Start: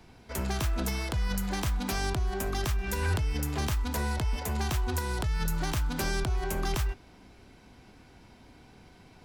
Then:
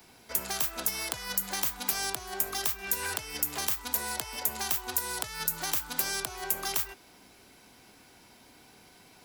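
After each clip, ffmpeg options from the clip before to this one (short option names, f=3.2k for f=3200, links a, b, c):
-filter_complex "[0:a]aemphasis=mode=production:type=bsi,acrossover=split=170|450[a][b][c];[a]acompressor=threshold=-52dB:ratio=4[d];[b]acompressor=threshold=-50dB:ratio=4[e];[c]acompressor=threshold=-25dB:ratio=4[f];[d][e][f]amix=inputs=3:normalize=0"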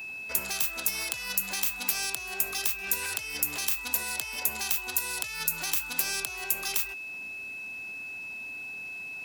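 -filter_complex "[0:a]acrossover=split=2000[a][b];[a]alimiter=level_in=11dB:limit=-24dB:level=0:latency=1:release=394,volume=-11dB[c];[c][b]amix=inputs=2:normalize=0,aeval=exprs='val(0)+0.0126*sin(2*PI*2600*n/s)':c=same,volume=1.5dB"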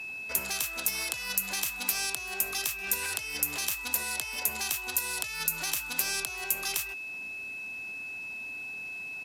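-af "aresample=32000,aresample=44100"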